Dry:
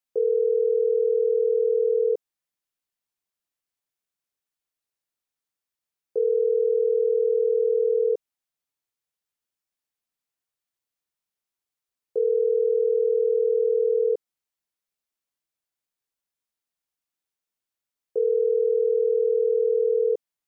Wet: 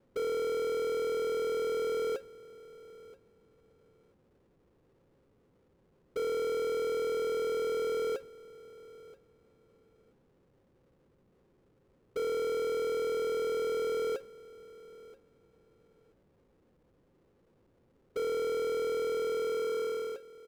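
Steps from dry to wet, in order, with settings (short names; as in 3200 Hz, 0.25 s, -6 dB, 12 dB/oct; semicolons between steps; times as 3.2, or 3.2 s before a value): ending faded out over 1.63 s; expander -24 dBFS; limiter -27 dBFS, peak gain reduction 11.5 dB; rippled Chebyshev low-pass 550 Hz, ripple 3 dB; power-law curve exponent 0.35; feedback echo 0.98 s, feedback 15%, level -20 dB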